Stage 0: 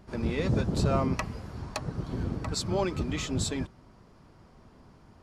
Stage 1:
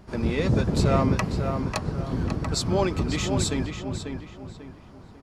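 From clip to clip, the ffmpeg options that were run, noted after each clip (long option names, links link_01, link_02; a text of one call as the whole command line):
ffmpeg -i in.wav -filter_complex "[0:a]asplit=2[link_01][link_02];[link_02]adelay=543,lowpass=frequency=3400:poles=1,volume=-6dB,asplit=2[link_03][link_04];[link_04]adelay=543,lowpass=frequency=3400:poles=1,volume=0.36,asplit=2[link_05][link_06];[link_06]adelay=543,lowpass=frequency=3400:poles=1,volume=0.36,asplit=2[link_07][link_08];[link_08]adelay=543,lowpass=frequency=3400:poles=1,volume=0.36[link_09];[link_01][link_03][link_05][link_07][link_09]amix=inputs=5:normalize=0,volume=4.5dB" out.wav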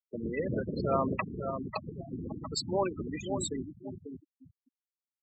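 ffmpeg -i in.wav -af "afftfilt=real='re*gte(hypot(re,im),0.1)':imag='im*gte(hypot(re,im),0.1)':win_size=1024:overlap=0.75,highpass=frequency=490:poles=1,afftfilt=real='re*gte(hypot(re,im),0.0178)':imag='im*gte(hypot(re,im),0.0178)':win_size=1024:overlap=0.75,volume=-2dB" out.wav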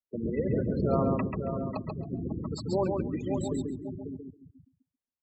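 ffmpeg -i in.wav -filter_complex "[0:a]tiltshelf=frequency=970:gain=8,asplit=2[link_01][link_02];[link_02]aecho=0:1:137|274|411:0.631|0.0946|0.0142[link_03];[link_01][link_03]amix=inputs=2:normalize=0,volume=-3dB" out.wav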